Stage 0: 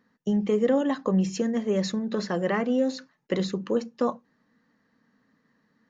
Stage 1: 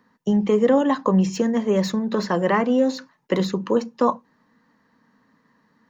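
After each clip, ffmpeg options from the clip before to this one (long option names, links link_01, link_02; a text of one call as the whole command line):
ffmpeg -i in.wav -filter_complex "[0:a]equalizer=frequency=980:width=4:gain=9,acrossover=split=290|2500[link_01][link_02][link_03];[link_03]asoftclip=type=tanh:threshold=-32dB[link_04];[link_01][link_02][link_04]amix=inputs=3:normalize=0,volume=5dB" out.wav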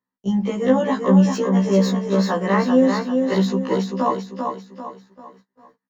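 ffmpeg -i in.wav -filter_complex "[0:a]asplit=2[link_01][link_02];[link_02]aecho=0:1:393|786|1179|1572|1965:0.562|0.225|0.09|0.036|0.0144[link_03];[link_01][link_03]amix=inputs=2:normalize=0,agate=range=-26dB:threshold=-49dB:ratio=16:detection=peak,afftfilt=real='re*1.73*eq(mod(b,3),0)':imag='im*1.73*eq(mod(b,3),0)':win_size=2048:overlap=0.75,volume=2.5dB" out.wav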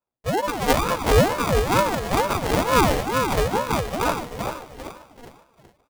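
ffmpeg -i in.wav -af "acrusher=samples=37:mix=1:aa=0.000001,aecho=1:1:149|298|447|596:0.211|0.0972|0.0447|0.0206,aeval=exprs='val(0)*sin(2*PI*510*n/s+510*0.55/2.2*sin(2*PI*2.2*n/s))':channel_layout=same" out.wav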